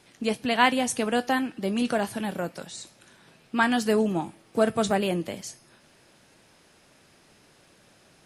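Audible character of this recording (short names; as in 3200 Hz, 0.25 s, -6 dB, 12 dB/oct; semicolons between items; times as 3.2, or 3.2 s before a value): noise floor -59 dBFS; spectral tilt -4.0 dB/oct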